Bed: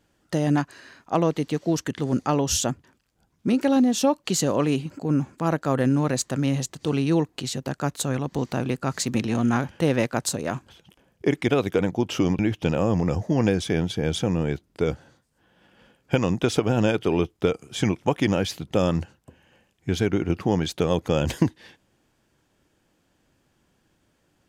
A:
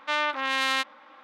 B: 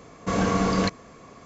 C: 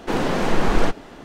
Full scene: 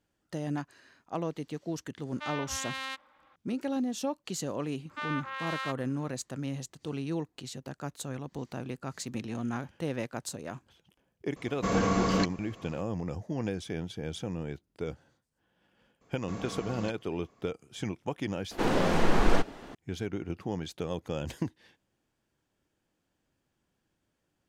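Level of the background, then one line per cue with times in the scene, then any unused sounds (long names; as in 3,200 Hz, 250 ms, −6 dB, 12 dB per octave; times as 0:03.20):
bed −12 dB
0:02.13: mix in A −12 dB
0:04.89: mix in A −6.5 dB + Chebyshev high-pass with heavy ripple 330 Hz, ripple 9 dB
0:11.36: mix in B −4 dB
0:16.01: mix in B −17.5 dB
0:18.51: mix in C −5 dB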